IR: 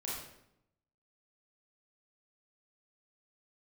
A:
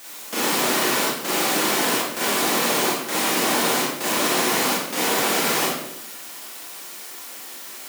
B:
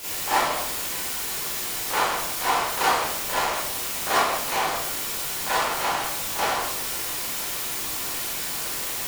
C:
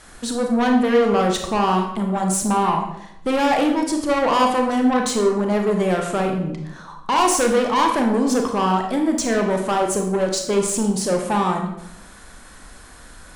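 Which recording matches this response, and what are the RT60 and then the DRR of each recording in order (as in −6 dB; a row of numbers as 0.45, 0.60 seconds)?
A; 0.80, 0.80, 0.80 seconds; −6.5, −11.0, 2.5 decibels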